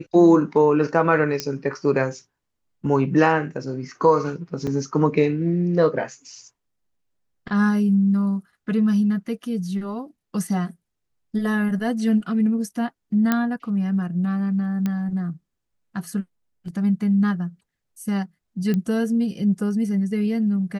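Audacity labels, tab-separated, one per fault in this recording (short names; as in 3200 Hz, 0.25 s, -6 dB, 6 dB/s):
1.400000	1.400000	pop -9 dBFS
4.670000	4.670000	gap 4.3 ms
13.320000	13.320000	pop -7 dBFS
14.860000	14.860000	pop -13 dBFS
18.740000	18.740000	pop -13 dBFS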